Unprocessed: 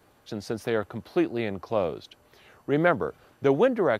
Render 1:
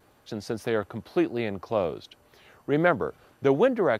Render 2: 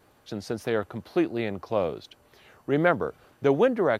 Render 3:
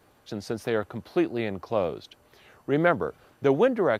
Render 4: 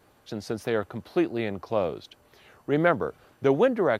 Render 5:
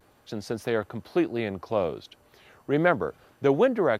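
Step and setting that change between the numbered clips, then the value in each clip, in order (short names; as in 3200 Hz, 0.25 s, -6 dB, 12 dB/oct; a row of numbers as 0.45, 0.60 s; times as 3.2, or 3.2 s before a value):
vibrato, rate: 0.84, 2.1, 7.6, 3.4, 0.4 Hz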